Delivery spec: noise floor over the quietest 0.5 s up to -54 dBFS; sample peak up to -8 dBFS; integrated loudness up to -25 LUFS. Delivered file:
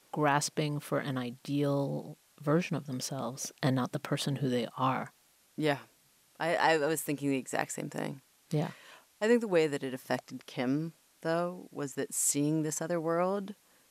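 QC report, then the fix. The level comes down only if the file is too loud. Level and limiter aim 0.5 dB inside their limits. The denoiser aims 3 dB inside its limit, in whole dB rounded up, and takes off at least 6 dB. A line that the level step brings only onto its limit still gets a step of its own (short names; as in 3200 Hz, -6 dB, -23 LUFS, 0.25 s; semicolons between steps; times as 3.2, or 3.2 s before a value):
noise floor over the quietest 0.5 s -66 dBFS: OK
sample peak -12.5 dBFS: OK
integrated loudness -32.5 LUFS: OK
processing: none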